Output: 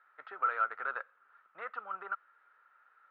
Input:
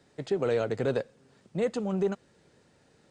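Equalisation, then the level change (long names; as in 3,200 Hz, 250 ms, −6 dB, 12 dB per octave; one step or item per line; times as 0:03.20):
four-pole ladder band-pass 1,400 Hz, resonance 80%
high-frequency loss of the air 330 metres
parametric band 1,200 Hz +6.5 dB 2.5 octaves
+6.0 dB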